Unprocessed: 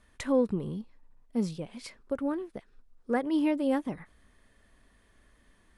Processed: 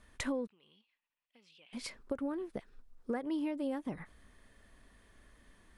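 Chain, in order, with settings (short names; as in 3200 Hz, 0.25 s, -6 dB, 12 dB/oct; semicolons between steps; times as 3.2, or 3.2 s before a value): compressor 16:1, threshold -33 dBFS, peak gain reduction 14 dB; 0.47–1.73 band-pass 2800 Hz, Q 3.7; gain +1 dB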